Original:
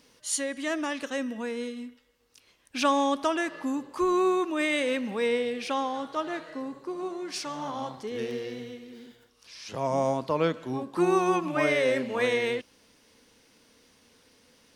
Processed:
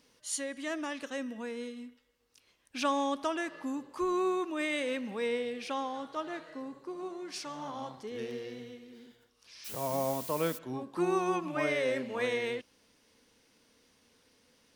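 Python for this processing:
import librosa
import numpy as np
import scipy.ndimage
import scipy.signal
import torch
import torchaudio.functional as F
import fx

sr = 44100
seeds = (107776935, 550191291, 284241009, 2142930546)

y = fx.dmg_noise_colour(x, sr, seeds[0], colour='blue', level_db=-37.0, at=(9.64, 10.57), fade=0.02)
y = y * 10.0 ** (-6.0 / 20.0)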